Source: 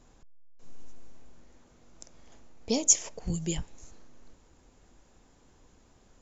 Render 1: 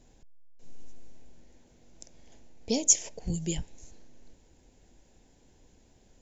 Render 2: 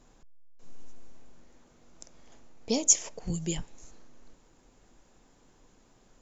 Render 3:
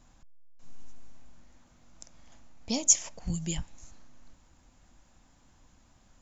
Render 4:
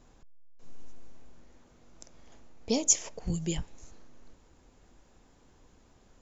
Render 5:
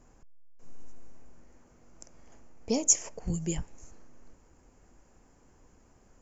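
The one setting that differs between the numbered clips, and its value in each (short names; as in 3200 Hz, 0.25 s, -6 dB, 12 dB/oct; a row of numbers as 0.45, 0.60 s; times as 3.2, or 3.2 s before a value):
bell, frequency: 1200, 69, 420, 11000, 3700 Hz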